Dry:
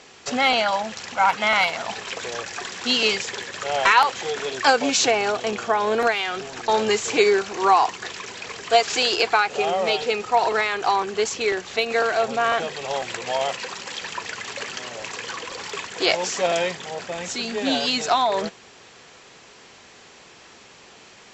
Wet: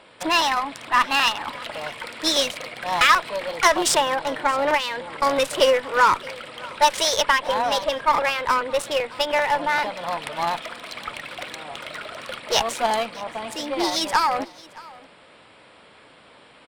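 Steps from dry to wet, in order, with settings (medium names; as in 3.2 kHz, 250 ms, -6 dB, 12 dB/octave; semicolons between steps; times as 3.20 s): local Wiener filter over 9 samples; Chebyshev shaper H 5 -25 dB, 7 -28 dB, 8 -24 dB, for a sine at -4 dBFS; tape speed +28%; delay 621 ms -22 dB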